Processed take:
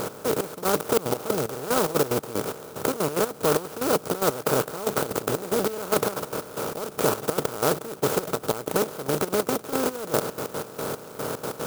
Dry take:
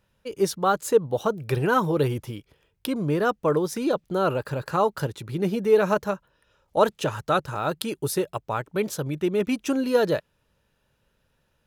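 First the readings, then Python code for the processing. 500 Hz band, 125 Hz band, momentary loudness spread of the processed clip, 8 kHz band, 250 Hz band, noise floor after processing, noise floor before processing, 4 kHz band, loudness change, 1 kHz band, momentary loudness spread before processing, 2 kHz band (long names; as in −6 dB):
−1.0 dB, −4.5 dB, 8 LU, +7.0 dB, −3.0 dB, −42 dBFS, −71 dBFS, +3.0 dB, −1.5 dB, −1.5 dB, 9 LU, −1.0 dB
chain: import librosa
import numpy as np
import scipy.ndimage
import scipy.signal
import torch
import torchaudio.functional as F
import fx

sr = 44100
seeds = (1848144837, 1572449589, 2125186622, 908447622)

y = fx.bin_compress(x, sr, power=0.2)
y = fx.step_gate(y, sr, bpm=185, pattern='x..xx...xx.x.', floor_db=-12.0, edge_ms=4.5)
y = fx.clock_jitter(y, sr, seeds[0], jitter_ms=0.089)
y = F.gain(torch.from_numpy(y), -9.0).numpy()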